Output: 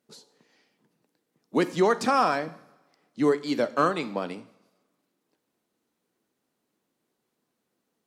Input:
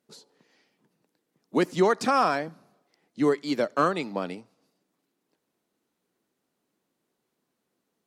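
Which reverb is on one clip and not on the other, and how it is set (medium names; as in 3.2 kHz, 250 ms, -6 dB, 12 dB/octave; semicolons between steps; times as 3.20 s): two-slope reverb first 0.6 s, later 1.7 s, from -19 dB, DRR 13 dB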